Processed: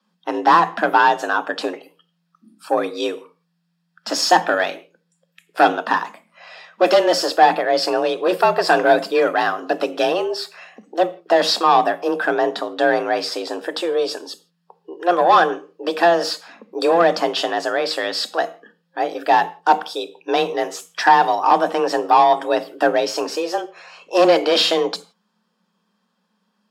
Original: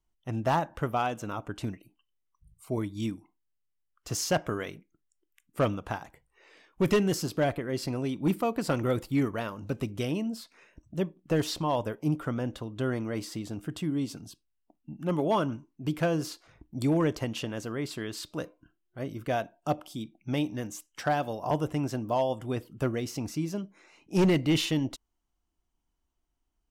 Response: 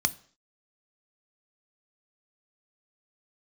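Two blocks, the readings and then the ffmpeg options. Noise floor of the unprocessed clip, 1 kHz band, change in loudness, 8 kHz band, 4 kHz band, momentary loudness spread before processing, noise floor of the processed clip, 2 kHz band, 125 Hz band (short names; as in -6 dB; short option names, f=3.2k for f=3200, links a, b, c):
-79 dBFS, +18.5 dB, +12.5 dB, +8.0 dB, +15.5 dB, 13 LU, -70 dBFS, +17.0 dB, -10.5 dB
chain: -filter_complex "[0:a]asplit=2[a][b];[b]highpass=f=720:p=1,volume=13dB,asoftclip=type=tanh:threshold=-17.5dB[c];[a][c]amix=inputs=2:normalize=0,lowpass=f=2.6k:p=1,volume=-6dB,afreqshift=170[d];[1:a]atrim=start_sample=2205,afade=t=out:st=0.18:d=0.01,atrim=end_sample=8379,asetrate=33516,aresample=44100[e];[d][e]afir=irnorm=-1:irlink=0,volume=2dB"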